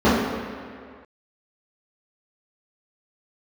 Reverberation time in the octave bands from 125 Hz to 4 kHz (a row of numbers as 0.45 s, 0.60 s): 1.7 s, 1.9 s, 2.0 s, 2.1 s, 2.1 s, 1.6 s